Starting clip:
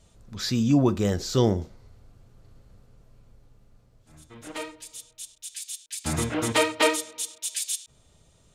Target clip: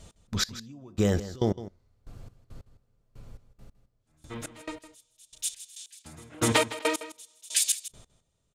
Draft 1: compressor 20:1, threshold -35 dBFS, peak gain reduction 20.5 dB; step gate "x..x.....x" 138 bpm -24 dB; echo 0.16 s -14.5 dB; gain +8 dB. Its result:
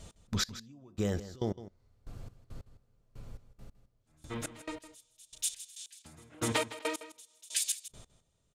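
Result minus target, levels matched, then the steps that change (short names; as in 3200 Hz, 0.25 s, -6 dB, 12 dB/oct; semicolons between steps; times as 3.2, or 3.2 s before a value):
compressor: peak gain reduction +7.5 dB
change: compressor 20:1, threshold -27 dBFS, peak gain reduction 13 dB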